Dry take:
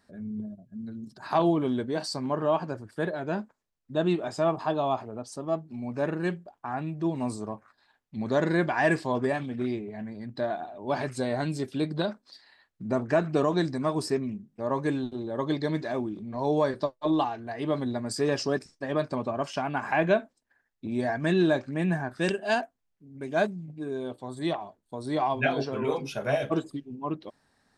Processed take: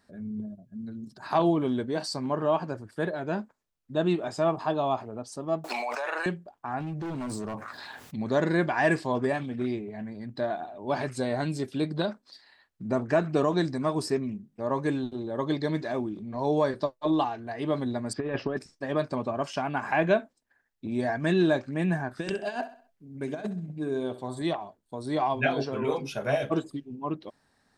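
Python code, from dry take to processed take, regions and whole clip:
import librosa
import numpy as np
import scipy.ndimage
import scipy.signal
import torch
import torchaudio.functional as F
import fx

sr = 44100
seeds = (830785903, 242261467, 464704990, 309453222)

y = fx.chain(x, sr, fx.highpass(hz=710.0, slope=24),
    fx.env_flatten(amount_pct=100), at=(5.64, 6.26))
y = fx.chain(y, sr, fx.highpass(hz=80.0, slope=12),
    fx.clip_hard(threshold_db=-32.0),
    fx.env_flatten(amount_pct=70), at=(6.8, 8.16))
y = fx.chain(y, sr, fx.lowpass(hz=2900.0, slope=24),
    fx.over_compress(threshold_db=-28.0, ratio=-0.5), at=(18.13, 18.57))
y = fx.chain(y, sr, fx.over_compress(threshold_db=-29.0, ratio=-0.5),
    fx.echo_feedback(ms=65, feedback_pct=41, wet_db=-14.0), at=(22.17, 24.42))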